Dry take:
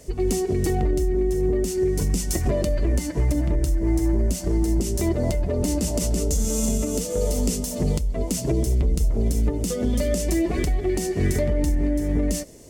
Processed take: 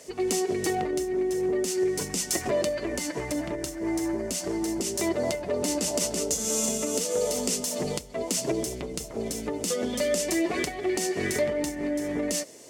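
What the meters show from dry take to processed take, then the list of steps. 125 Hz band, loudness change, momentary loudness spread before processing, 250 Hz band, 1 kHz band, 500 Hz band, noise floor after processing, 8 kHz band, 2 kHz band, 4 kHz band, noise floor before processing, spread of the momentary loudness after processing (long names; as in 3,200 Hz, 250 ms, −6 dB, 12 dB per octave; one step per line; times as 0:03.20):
−16.5 dB, −4.0 dB, 2 LU, −5.0 dB, +1.5 dB, −1.5 dB, −39 dBFS, +1.5 dB, +3.5 dB, +3.0 dB, −30 dBFS, 5 LU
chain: meter weighting curve A
level +2.5 dB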